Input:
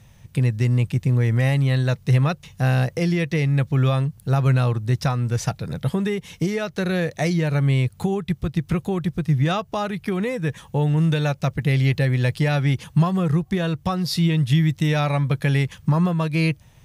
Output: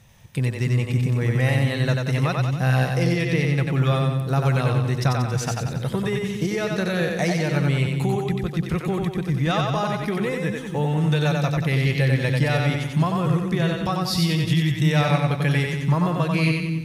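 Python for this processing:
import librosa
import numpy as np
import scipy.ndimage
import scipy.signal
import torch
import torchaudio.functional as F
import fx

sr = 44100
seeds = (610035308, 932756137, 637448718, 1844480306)

p1 = fx.low_shelf(x, sr, hz=280.0, db=-4.5)
y = p1 + fx.echo_split(p1, sr, split_hz=300.0, low_ms=291, high_ms=92, feedback_pct=52, wet_db=-3, dry=0)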